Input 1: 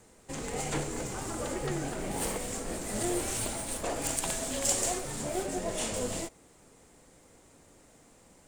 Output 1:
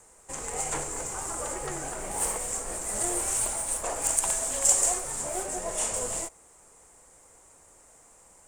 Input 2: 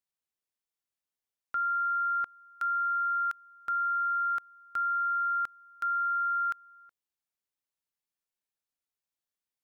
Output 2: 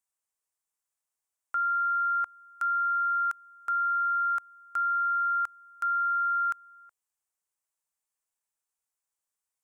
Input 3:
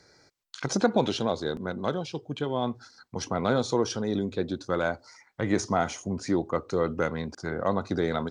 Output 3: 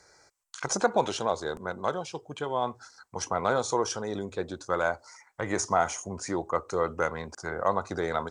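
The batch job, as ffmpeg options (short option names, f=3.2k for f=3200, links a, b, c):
-af "equalizer=f=125:t=o:w=1:g=-6,equalizer=f=250:t=o:w=1:g=-9,equalizer=f=1k:t=o:w=1:g=5,equalizer=f=4k:t=o:w=1:g=-7,equalizer=f=8k:t=o:w=1:g=10"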